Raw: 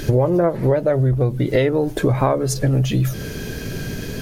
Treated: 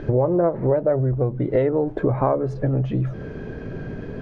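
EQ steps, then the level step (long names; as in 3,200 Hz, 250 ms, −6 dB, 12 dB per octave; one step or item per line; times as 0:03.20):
low-pass filter 1,100 Hz 12 dB per octave
low-shelf EQ 290 Hz −5.5 dB
0.0 dB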